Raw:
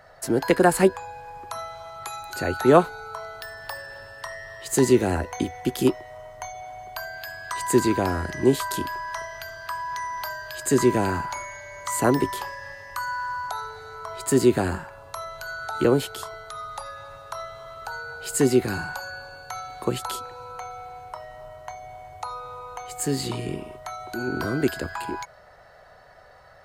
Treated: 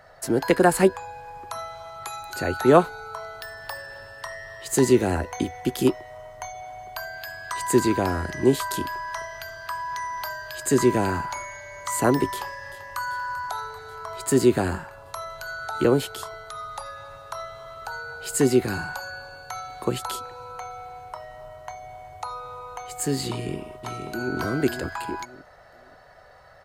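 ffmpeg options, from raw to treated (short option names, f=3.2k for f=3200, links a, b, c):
-filter_complex "[0:a]asplit=2[a][b];[b]afade=t=in:st=12.31:d=0.01,afade=t=out:st=13:d=0.01,aecho=0:1:390|780|1170|1560|1950|2340|2730|3120|3510|3900|4290:0.177828|0.133371|0.100028|0.0750212|0.0562659|0.0421994|0.0316496|0.0237372|0.0178029|0.0133522|0.0100141[c];[a][c]amix=inputs=2:normalize=0,asplit=2[d][e];[e]afade=t=in:st=23.3:d=0.01,afade=t=out:st=24.36:d=0.01,aecho=0:1:530|1060|1590:0.473151|0.118288|0.029572[f];[d][f]amix=inputs=2:normalize=0"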